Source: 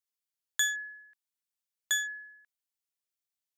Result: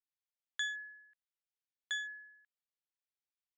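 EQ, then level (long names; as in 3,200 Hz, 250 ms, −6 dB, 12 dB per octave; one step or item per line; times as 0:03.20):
resonant band-pass 2,800 Hz, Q 0.59
high-frequency loss of the air 110 metres
−4.5 dB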